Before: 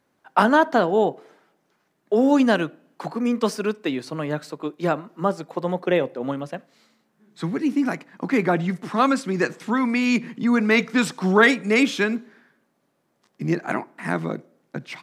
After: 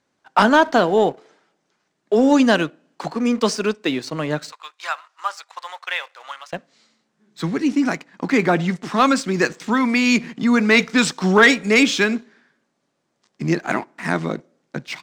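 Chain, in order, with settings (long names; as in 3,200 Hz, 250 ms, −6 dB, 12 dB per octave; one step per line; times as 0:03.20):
low-pass filter 7,800 Hz 24 dB per octave
high-shelf EQ 3,200 Hz +9 dB
leveller curve on the samples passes 1
0:04.52–0:06.53: high-pass filter 1,000 Hz 24 dB per octave
level −1 dB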